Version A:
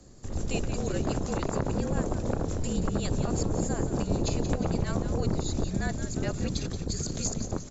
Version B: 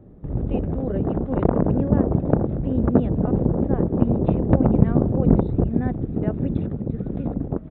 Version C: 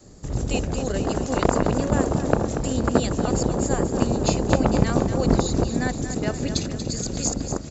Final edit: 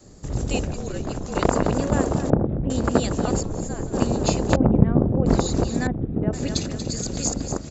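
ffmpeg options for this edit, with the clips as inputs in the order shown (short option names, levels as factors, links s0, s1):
-filter_complex "[0:a]asplit=2[s0][s1];[1:a]asplit=3[s2][s3][s4];[2:a]asplit=6[s5][s6][s7][s8][s9][s10];[s5]atrim=end=0.722[s11];[s0]atrim=start=0.718:end=1.352[s12];[s6]atrim=start=1.348:end=2.302[s13];[s2]atrim=start=2.298:end=2.702[s14];[s7]atrim=start=2.698:end=3.412[s15];[s1]atrim=start=3.408:end=3.932[s16];[s8]atrim=start=3.928:end=4.562[s17];[s3]atrim=start=4.558:end=5.262[s18];[s9]atrim=start=5.258:end=5.872[s19];[s4]atrim=start=5.868:end=6.332[s20];[s10]atrim=start=6.328[s21];[s11][s12]acrossfade=d=0.004:c1=hsin:c2=hsin[s22];[s22][s13]acrossfade=d=0.004:c1=hsin:c2=hsin[s23];[s23][s14]acrossfade=d=0.004:c1=hsin:c2=hsin[s24];[s24][s15]acrossfade=d=0.004:c1=hsin:c2=hsin[s25];[s25][s16]acrossfade=d=0.004:c1=hsin:c2=hsin[s26];[s26][s17]acrossfade=d=0.004:c1=hsin:c2=hsin[s27];[s27][s18]acrossfade=d=0.004:c1=hsin:c2=hsin[s28];[s28][s19]acrossfade=d=0.004:c1=hsin:c2=hsin[s29];[s29][s20]acrossfade=d=0.004:c1=hsin:c2=hsin[s30];[s30][s21]acrossfade=d=0.004:c1=hsin:c2=hsin"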